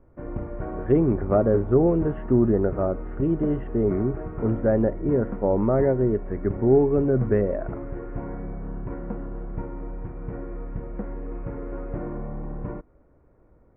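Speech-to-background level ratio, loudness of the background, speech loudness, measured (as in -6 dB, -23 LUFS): 12.5 dB, -35.5 LUFS, -23.0 LUFS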